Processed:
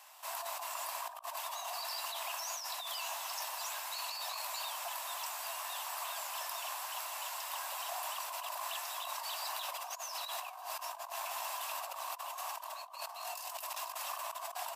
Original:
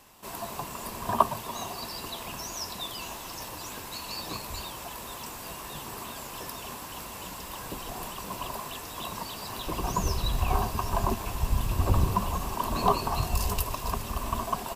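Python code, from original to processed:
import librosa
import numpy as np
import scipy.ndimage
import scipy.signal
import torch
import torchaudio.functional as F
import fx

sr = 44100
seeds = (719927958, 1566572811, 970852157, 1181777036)

y = scipy.signal.sosfilt(scipy.signal.butter(12, 610.0, 'highpass', fs=sr, output='sos'), x)
y = fx.over_compress(y, sr, threshold_db=-39.0, ratio=-1.0)
y = y * librosa.db_to_amplitude(-3.0)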